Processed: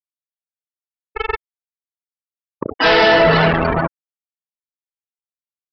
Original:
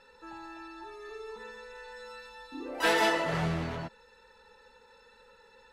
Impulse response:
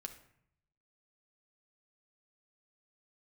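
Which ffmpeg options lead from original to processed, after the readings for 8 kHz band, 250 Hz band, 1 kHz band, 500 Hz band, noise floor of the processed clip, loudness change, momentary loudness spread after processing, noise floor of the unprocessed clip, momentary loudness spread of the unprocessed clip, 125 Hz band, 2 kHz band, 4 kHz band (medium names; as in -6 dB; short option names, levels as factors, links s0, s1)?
no reading, +14.0 dB, +14.5 dB, +17.0 dB, under -85 dBFS, +16.5 dB, 18 LU, -60 dBFS, 20 LU, +14.0 dB, +15.0 dB, +15.0 dB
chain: -filter_complex "[0:a]aecho=1:1:4.7:0.32[s0];[1:a]atrim=start_sample=2205,atrim=end_sample=4410[s1];[s0][s1]afir=irnorm=-1:irlink=0,acrossover=split=320[s2][s3];[s2]acompressor=threshold=0.00891:ratio=10[s4];[s4][s3]amix=inputs=2:normalize=0,aeval=exprs='val(0)+0.00112*(sin(2*PI*50*n/s)+sin(2*PI*2*50*n/s)/2+sin(2*PI*3*50*n/s)/3+sin(2*PI*4*50*n/s)/4+sin(2*PI*5*50*n/s)/5)':c=same,acrossover=split=2600[s5][s6];[s5]acrusher=bits=5:mix=0:aa=0.000001[s7];[s7][s6]amix=inputs=2:normalize=0,afftfilt=real='re*gte(hypot(re,im),0.0178)':imag='im*gte(hypot(re,im),0.0178)':win_size=1024:overlap=0.75,aresample=11025,asoftclip=type=tanh:threshold=0.0266,aresample=44100,alimiter=level_in=44.7:limit=0.891:release=50:level=0:latency=1,volume=0.501"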